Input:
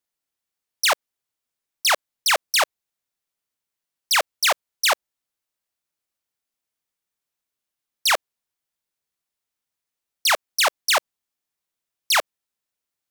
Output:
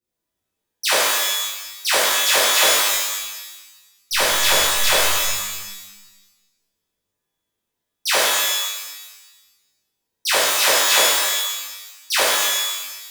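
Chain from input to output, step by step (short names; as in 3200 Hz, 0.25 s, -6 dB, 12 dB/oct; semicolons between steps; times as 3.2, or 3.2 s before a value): resonant low shelf 550 Hz +9.5 dB, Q 1.5; 4.12–4.9 backlash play -22 dBFS; shimmer reverb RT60 1.1 s, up +12 st, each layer -2 dB, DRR -10.5 dB; gain -8.5 dB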